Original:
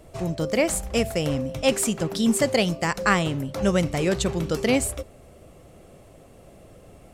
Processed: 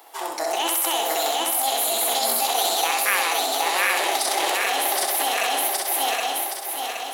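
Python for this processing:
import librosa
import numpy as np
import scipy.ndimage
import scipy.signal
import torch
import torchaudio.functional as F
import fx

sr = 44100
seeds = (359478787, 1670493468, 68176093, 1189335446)

p1 = fx.reverse_delay_fb(x, sr, ms=385, feedback_pct=71, wet_db=0.0)
p2 = scipy.signal.sosfilt(scipy.signal.bessel(8, 630.0, 'highpass', norm='mag', fs=sr, output='sos'), p1)
p3 = fx.high_shelf(p2, sr, hz=9600.0, db=6.0)
p4 = fx.over_compress(p3, sr, threshold_db=-29.0, ratio=-0.5)
p5 = p3 + F.gain(torch.from_numpy(p4), 1.5).numpy()
p6 = fx.formant_shift(p5, sr, semitones=5)
p7 = fx.echo_feedback(p6, sr, ms=64, feedback_pct=44, wet_db=-3.5)
y = F.gain(torch.from_numpy(p7), -3.5).numpy()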